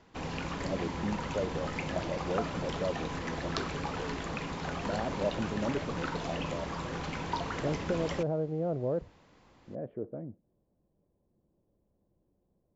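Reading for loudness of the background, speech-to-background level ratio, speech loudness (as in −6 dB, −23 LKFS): −36.5 LKFS, −0.5 dB, −37.0 LKFS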